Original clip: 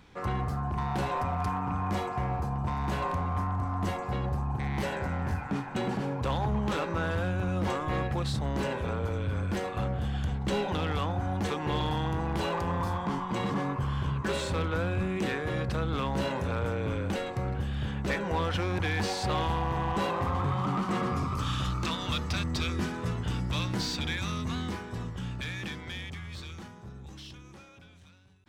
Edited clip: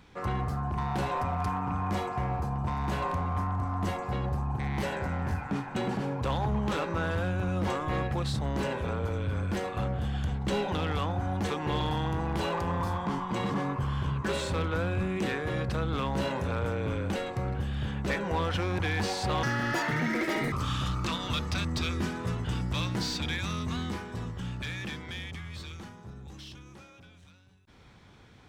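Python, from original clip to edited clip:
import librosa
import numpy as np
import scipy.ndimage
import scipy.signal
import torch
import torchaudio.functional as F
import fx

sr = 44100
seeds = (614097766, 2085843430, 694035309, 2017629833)

y = fx.edit(x, sr, fx.speed_span(start_s=19.43, length_s=1.88, speed=1.72), tone=tone)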